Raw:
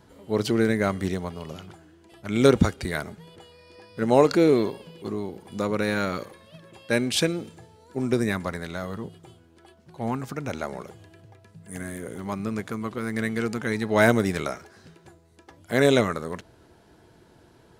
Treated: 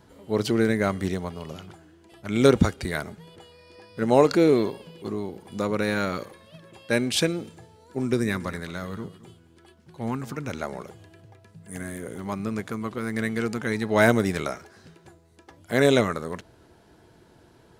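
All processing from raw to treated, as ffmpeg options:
-filter_complex "[0:a]asettb=1/sr,asplit=3[s0][s1][s2];[s0]atrim=end=8.034[s3];[s1]atrim=start=8.03:end=10.62,asetpts=PTS-STARTPTS,afade=t=in:d=0.004:c=qsin,afade=t=out:st=2.586:d=0.004:c=qsin,equalizer=f=700:t=o:w=0.7:g=-6,aecho=1:1:218:0.141,atrim=end_sample=114219[s4];[s2]atrim=start=10.616[s5];[s3][s4]acrossfade=d=0.004:c1=hsin:c2=qsin[s6];[s6][s5]acrossfade=d=0.004:c1=qsin:c2=hsin"

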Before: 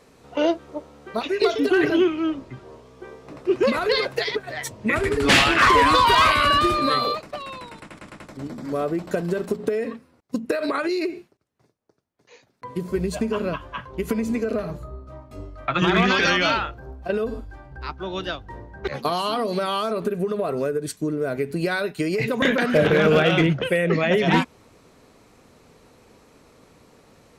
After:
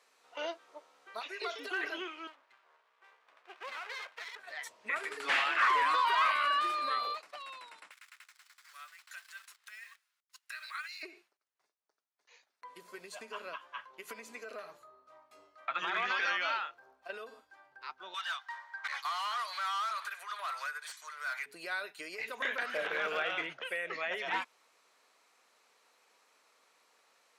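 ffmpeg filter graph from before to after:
-filter_complex "[0:a]asettb=1/sr,asplit=3[s0][s1][s2];[s0]atrim=end=2.274[s3];[s1]atrim=start=2.27:end=4.39,asetpts=PTS-STARTPTS,afade=t=in:d=0.004:c=qsin,afade=t=out:st=2.116:d=0.004:c=qsin,acrossover=split=550 3100:gain=0.224 1 0.0891[s4][s5][s6];[s4][s5][s6]amix=inputs=3:normalize=0,aeval=exprs='max(val(0),0)':c=same[s7];[s2]atrim=start=4.386[s8];[s3][s7]acrossfade=d=0.004:c1=hsin:c2=qsin[s9];[s9][s8]acrossfade=d=0.004:c1=qsin:c2=hsin,asettb=1/sr,asplit=3[s10][s11][s12];[s10]atrim=end=7.914[s13];[s11]atrim=start=7.91:end=11.03,asetpts=PTS-STARTPTS,afade=t=in:d=0.004:c=qsin,afade=t=out:st=3.116:d=0.004:c=qsin,highpass=f=1400:w=0.5412,highpass=f=1400:w=1.3066,acrusher=bits=9:dc=4:mix=0:aa=0.000001[s14];[s12]atrim=start=11.026[s15];[s13][s14]acrossfade=d=0.004:c1=hsin:c2=qsin[s16];[s16][s15]acrossfade=d=0.004:c1=qsin:c2=hsin,asettb=1/sr,asplit=3[s17][s18][s19];[s17]atrim=end=18.144[s20];[s18]atrim=start=18.14:end=21.46,asetpts=PTS-STARTPTS,afade=t=in:d=0.004:c=qsin,afade=t=out:st=3.316:d=0.004:c=qsin,highpass=f=990:w=0.5412,highpass=f=990:w=1.3066,bandreject=f=2700:w=10,asplit=2[s21][s22];[s22]highpass=f=720:p=1,volume=11.2,asoftclip=type=tanh:threshold=0.133[s23];[s21][s23]amix=inputs=2:normalize=0,lowpass=f=4900:p=1,volume=0.501[s24];[s19]atrim=start=21.456[s25];[s20][s24]acrossfade=d=0.004:c1=hsin:c2=qsin[s26];[s26][s25]acrossfade=d=0.004:c1=qsin:c2=hsin,highshelf=f=12000:g=-4.5,acrossover=split=2500[s27][s28];[s28]acompressor=threshold=0.0178:ratio=4:attack=1:release=60[s29];[s27][s29]amix=inputs=2:normalize=0,highpass=1000,volume=0.376"

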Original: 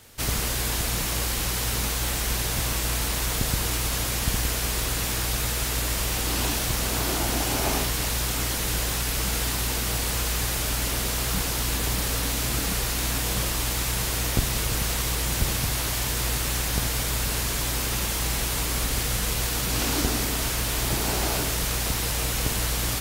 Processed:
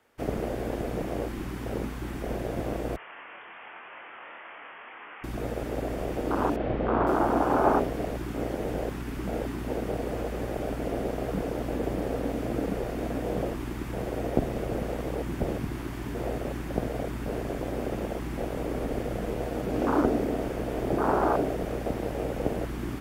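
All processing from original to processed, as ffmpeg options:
-filter_complex "[0:a]asettb=1/sr,asplit=3[s0][s1][s2];[s0]atrim=end=2.964[s3];[s1]atrim=start=2.96:end=5.24,asetpts=PTS-STARTPTS,afade=t=in:d=0.004:c=qsin,afade=t=out:st=2.276:d=0.004:c=qsin,highpass=820,asplit=2[s4][s5];[s5]adelay=25,volume=0.708[s6];[s4][s6]amix=inputs=2:normalize=0,atrim=end_sample=100548,lowpass=f=3100:t=q:w=0.5098,lowpass=f=3100:t=q:w=0.6013,lowpass=f=3100:t=q:w=0.9,lowpass=f=3100:t=q:w=2.563,afreqshift=-3700[s7];[s2]atrim=start=5.236[s8];[s3][s7]acrossfade=d=0.004:c1=hsin:c2=qsin[s9];[s9][s8]acrossfade=d=0.004:c1=qsin:c2=hsin,asettb=1/sr,asplit=3[s10][s11][s12];[s10]atrim=end=6.564[s13];[s11]atrim=start=6.56:end=7.07,asetpts=PTS-STARTPTS,afade=t=in:d=0.004:c=qsin,afade=t=out:st=0.506:d=0.004:c=qsin,lowpass=f=3400:w=0.5412,lowpass=f=3400:w=1.3066,asplit=2[s14][s15];[s15]adelay=35,volume=0.596[s16];[s14][s16]amix=inputs=2:normalize=0,atrim=end_sample=22491[s17];[s12]atrim=start=7.066[s18];[s13][s17]acrossfade=d=0.004:c1=hsin:c2=qsin[s19];[s19][s18]acrossfade=d=0.004:c1=qsin:c2=hsin,afwtdn=0.0447,acrossover=split=230 2300:gain=0.158 1 0.141[s20][s21][s22];[s20][s21][s22]amix=inputs=3:normalize=0,bandreject=f=4000:w=21,volume=2.51"

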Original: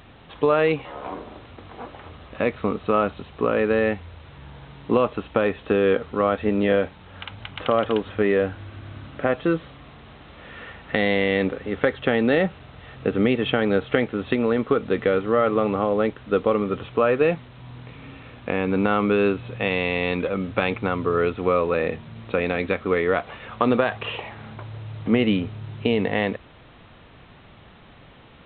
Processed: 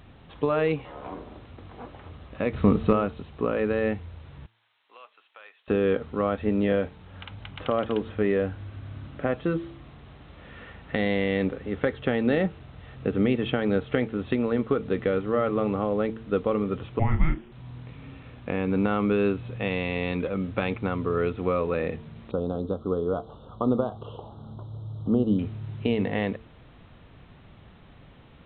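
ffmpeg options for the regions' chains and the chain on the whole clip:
-filter_complex "[0:a]asettb=1/sr,asplit=3[s0][s1][s2];[s0]atrim=end=2.534[s3];[s1]atrim=start=2.53:end=2.93,asetpts=PTS-STARTPTS,afade=t=in:d=0.004:c=qsin,afade=t=out:st=0.396:d=0.004:c=qsin,bass=f=250:g=6,treble=f=4000:g=1,acontrast=40[s4];[s2]atrim=start=2.926[s5];[s3][s4]acrossfade=d=0.004:c1=hsin:c2=qsin[s6];[s6][s5]acrossfade=d=0.004:c1=qsin:c2=hsin,asettb=1/sr,asplit=3[s7][s8][s9];[s7]atrim=end=4.464[s10];[s8]atrim=start=4.46:end=5.68,asetpts=PTS-STARTPTS,afade=t=in:d=0.004:c=qsin,afade=t=out:st=1.216:d=0.004:c=qsin,highpass=710,lowpass=3200,aderivative[s11];[s9]atrim=start=5.676[s12];[s10][s11]acrossfade=d=0.004:c1=hsin:c2=qsin[s13];[s13][s12]acrossfade=d=0.004:c1=qsin:c2=hsin,asettb=1/sr,asplit=3[s14][s15][s16];[s14]atrim=end=16.994[s17];[s15]atrim=start=16.99:end=17.52,asetpts=PTS-STARTPTS,afade=t=in:d=0.004:c=qsin,afade=t=out:st=0.526:d=0.004:c=qsin,lowshelf=f=120:g=-9.5,afreqshift=-480,asplit=2[s18][s19];[s19]adelay=31,volume=0.398[s20];[s18][s20]amix=inputs=2:normalize=0,atrim=end_sample=23373[s21];[s16]atrim=start=17.516[s22];[s17][s21]acrossfade=d=0.004:c1=hsin:c2=qsin[s23];[s23][s22]acrossfade=d=0.004:c1=qsin:c2=hsin,asettb=1/sr,asplit=3[s24][s25][s26];[s24]atrim=end=22.314[s27];[s25]atrim=start=22.31:end=25.39,asetpts=PTS-STARTPTS,afade=t=in:d=0.004:c=qsin,afade=t=out:st=3.076:d=0.004:c=qsin,asuperstop=centerf=2100:order=8:qfactor=1.1,equalizer=f=1800:t=o:w=1.9:g=-4.5,acrossover=split=3200[s28][s29];[s29]acompressor=threshold=0.00112:ratio=4:attack=1:release=60[s30];[s28][s30]amix=inputs=2:normalize=0[s31];[s26]atrim=start=25.386[s32];[s27][s31]acrossfade=d=0.004:c1=hsin:c2=qsin[s33];[s33][s32]acrossfade=d=0.004:c1=qsin:c2=hsin,lowshelf=f=310:g=8,bandreject=f=111.8:t=h:w=4,bandreject=f=223.6:t=h:w=4,bandreject=f=335.4:t=h:w=4,bandreject=f=447.2:t=h:w=4,volume=0.447"

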